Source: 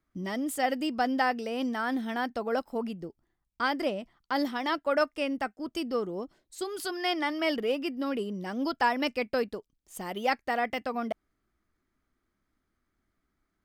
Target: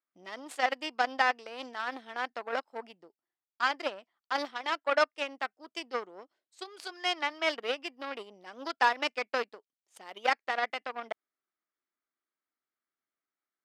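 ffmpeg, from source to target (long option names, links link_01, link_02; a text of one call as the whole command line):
ffmpeg -i in.wav -af "crystalizer=i=1.5:c=0,aeval=exprs='0.237*(cos(1*acos(clip(val(0)/0.237,-1,1)))-cos(1*PI/2))+0.0211*(cos(4*acos(clip(val(0)/0.237,-1,1)))-cos(4*PI/2))+0.00841*(cos(6*acos(clip(val(0)/0.237,-1,1)))-cos(6*PI/2))+0.0266*(cos(7*acos(clip(val(0)/0.237,-1,1)))-cos(7*PI/2))':channel_layout=same,highpass=480,lowpass=4100,volume=1dB" out.wav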